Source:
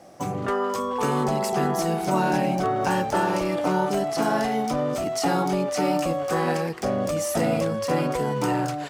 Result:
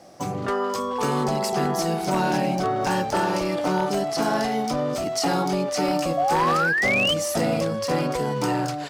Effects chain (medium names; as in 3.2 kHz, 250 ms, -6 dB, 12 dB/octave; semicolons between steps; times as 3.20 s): peaking EQ 4.7 kHz +5.5 dB 0.77 oct; painted sound rise, 6.17–7.14 s, 670–3200 Hz -22 dBFS; wavefolder -14 dBFS